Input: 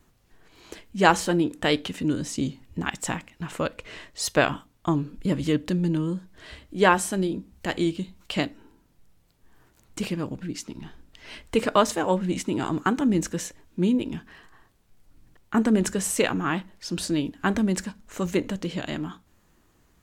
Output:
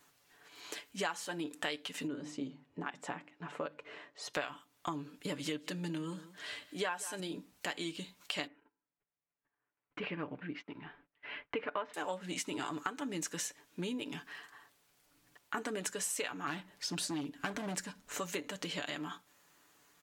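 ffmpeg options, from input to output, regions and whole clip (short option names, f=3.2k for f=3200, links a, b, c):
-filter_complex "[0:a]asettb=1/sr,asplit=3[a][b][c];[a]atrim=end=2.074[d];[b]atrim=start=2.07:end=4.34,asetpts=PTS-STARTPTS,afade=t=in:d=0.004:c=qsin,afade=t=out:st=2.266:d=0.004:c=qsin,bandpass=f=340:t=q:w=0.51,bandreject=f=50:t=h:w=6,bandreject=f=100:t=h:w=6,bandreject=f=150:t=h:w=6,bandreject=f=200:t=h:w=6,bandreject=f=250:t=h:w=6,bandreject=f=300:t=h:w=6,bandreject=f=350:t=h:w=6[e];[c]atrim=start=4.336[f];[d][e]acrossfade=d=0.004:c1=hsin:c2=qsin[g];[g][f]acrossfade=d=0.004:c1=qsin:c2=hsin,asettb=1/sr,asplit=3[h][i][j];[h]atrim=end=5.094[k];[i]atrim=start=5.09:end=7.2,asetpts=PTS-STARTPTS,afade=t=in:d=0.004:c=qsin,afade=t=out:st=2.106:d=0.004:c=qsin,highpass=77,aecho=1:1:183:0.106,atrim=end_sample=93051[l];[j]atrim=start=7.196[m];[k][l]acrossfade=d=0.004:c1=hsin:c2=qsin[n];[n][m]acrossfade=d=0.004:c1=qsin:c2=hsin,asettb=1/sr,asplit=3[o][p][q];[o]atrim=end=8.474[r];[p]atrim=start=8.47:end=11.94,asetpts=PTS-STARTPTS,afade=t=in:d=0.004:c=qsin,afade=t=out:st=3.466:d=0.004:c=qsin,lowpass=f=2.5k:w=0.5412,lowpass=f=2.5k:w=1.3066,agate=range=-24dB:threshold=-50dB:ratio=16:release=100:detection=peak[s];[q]atrim=start=11.936[t];[r][s]acrossfade=d=0.004:c1=hsin:c2=qsin[u];[u][t]acrossfade=d=0.004:c1=qsin:c2=hsin,asettb=1/sr,asplit=3[v][w][x];[v]atrim=end=16.474[y];[w]atrim=start=16.47:end=18.19,asetpts=PTS-STARTPTS,afade=t=in:d=0.004:c=qsin,afade=t=out:st=1.716:d=0.004:c=qsin,lowshelf=f=270:g=11,asoftclip=type=hard:threshold=-16dB[z];[x]atrim=start=18.186[aa];[y][z]acrossfade=d=0.004:c1=hsin:c2=qsin[ab];[ab][aa]acrossfade=d=0.004:c1=qsin:c2=hsin,highpass=f=1k:p=1,aecho=1:1:6.9:0.5,acompressor=threshold=-37dB:ratio=5,volume=1.5dB"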